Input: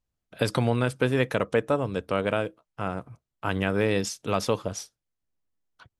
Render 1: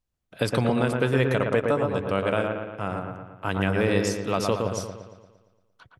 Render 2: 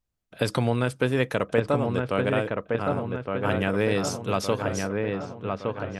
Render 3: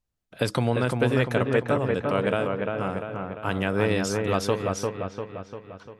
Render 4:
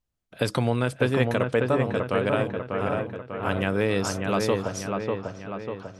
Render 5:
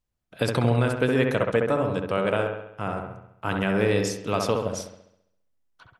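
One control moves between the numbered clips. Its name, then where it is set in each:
dark delay, time: 115, 1165, 347, 595, 67 ms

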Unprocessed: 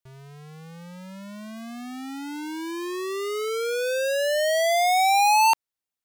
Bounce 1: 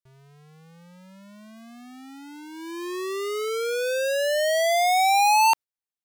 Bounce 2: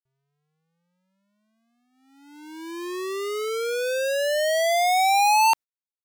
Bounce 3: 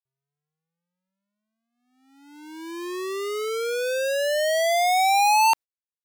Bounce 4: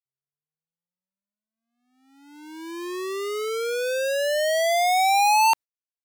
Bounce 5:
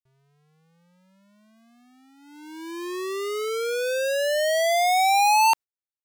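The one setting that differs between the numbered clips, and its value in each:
gate, range: -8, -33, -45, -59, -20 dB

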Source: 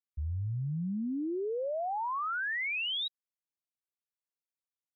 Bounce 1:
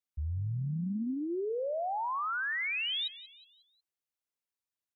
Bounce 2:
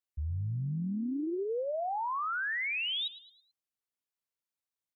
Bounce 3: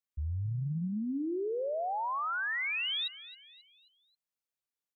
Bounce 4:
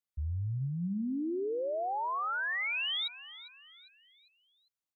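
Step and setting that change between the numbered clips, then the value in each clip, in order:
frequency-shifting echo, time: 0.182, 0.109, 0.268, 0.401 s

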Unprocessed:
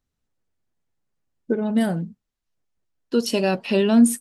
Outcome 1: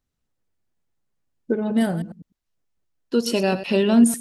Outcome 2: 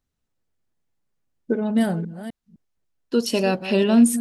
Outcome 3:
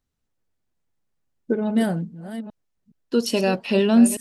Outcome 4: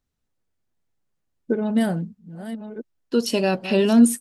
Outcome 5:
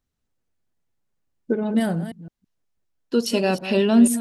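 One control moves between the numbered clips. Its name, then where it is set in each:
reverse delay, time: 0.101, 0.256, 0.417, 0.719, 0.163 s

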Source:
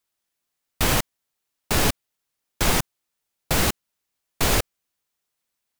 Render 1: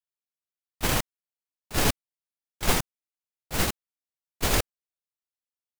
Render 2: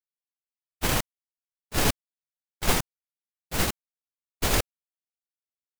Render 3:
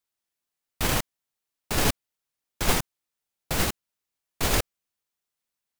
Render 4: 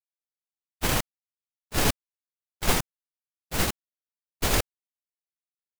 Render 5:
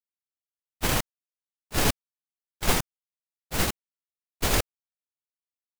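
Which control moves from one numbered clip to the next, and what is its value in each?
gate, range: -21, -59, -6, -47, -33 dB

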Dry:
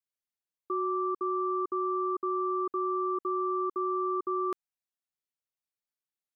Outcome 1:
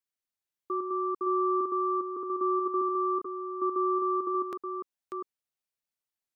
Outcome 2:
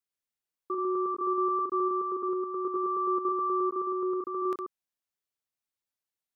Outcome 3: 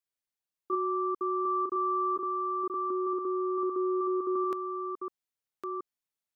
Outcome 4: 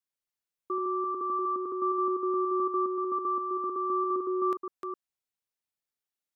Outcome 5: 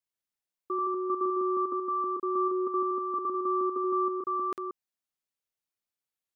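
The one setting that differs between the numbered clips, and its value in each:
reverse delay, time: 0.402, 0.106, 0.726, 0.26, 0.157 s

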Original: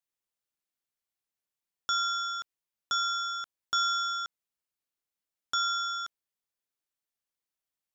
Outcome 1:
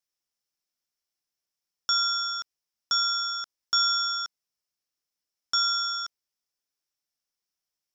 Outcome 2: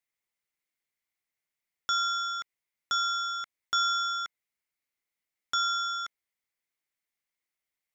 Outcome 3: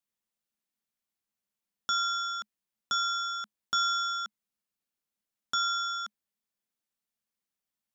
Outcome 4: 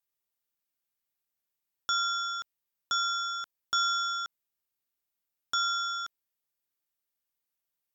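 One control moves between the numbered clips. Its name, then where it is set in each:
bell, frequency: 5400, 2100, 210, 16000 Hz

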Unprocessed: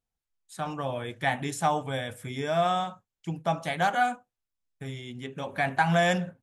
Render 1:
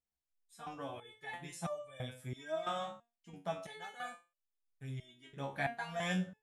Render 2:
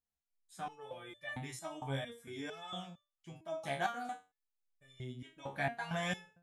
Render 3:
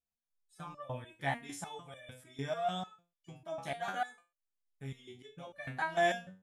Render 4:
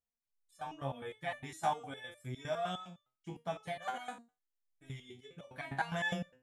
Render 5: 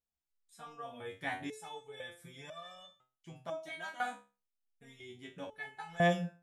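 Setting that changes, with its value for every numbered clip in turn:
stepped resonator, rate: 3, 4.4, 6.7, 9.8, 2 Hz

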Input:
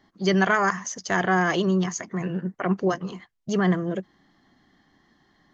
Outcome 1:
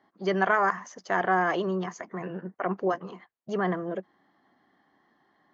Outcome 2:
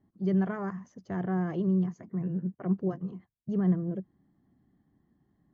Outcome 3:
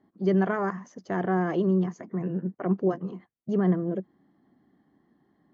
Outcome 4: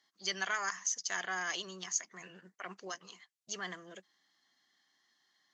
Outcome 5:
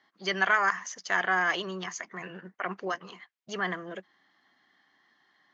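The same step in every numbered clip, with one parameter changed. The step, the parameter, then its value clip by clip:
band-pass, frequency: 790, 100, 280, 7600, 2100 Hz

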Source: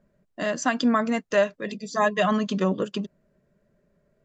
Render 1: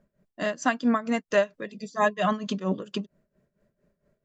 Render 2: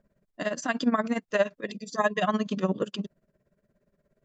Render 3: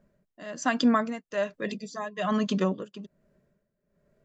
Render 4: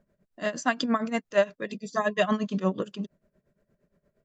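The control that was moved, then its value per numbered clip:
tremolo, rate: 4.4, 17, 1.2, 8.6 Hz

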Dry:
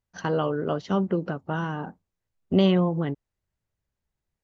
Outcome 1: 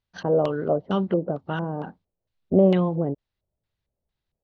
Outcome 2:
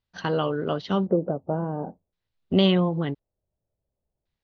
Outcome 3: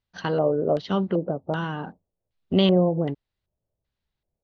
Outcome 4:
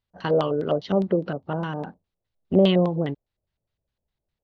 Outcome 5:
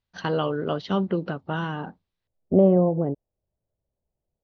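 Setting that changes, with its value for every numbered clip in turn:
LFO low-pass, rate: 2.2, 0.47, 1.3, 4.9, 0.22 Hz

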